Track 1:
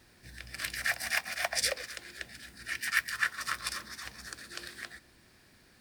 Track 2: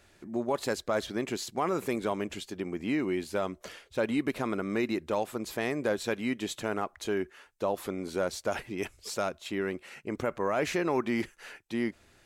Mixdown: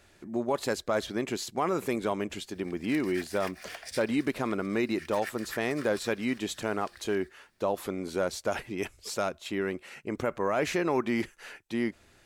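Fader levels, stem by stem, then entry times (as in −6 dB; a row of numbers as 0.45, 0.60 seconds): −12.0, +1.0 decibels; 2.30, 0.00 seconds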